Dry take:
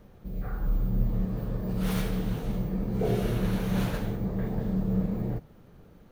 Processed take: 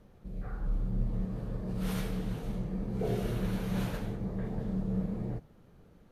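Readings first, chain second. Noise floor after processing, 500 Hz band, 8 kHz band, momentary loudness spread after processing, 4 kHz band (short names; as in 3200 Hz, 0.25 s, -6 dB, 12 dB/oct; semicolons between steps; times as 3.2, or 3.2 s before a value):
-59 dBFS, -5.0 dB, -4.5 dB, 6 LU, -5.0 dB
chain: gain -5 dB; Vorbis 64 kbps 32000 Hz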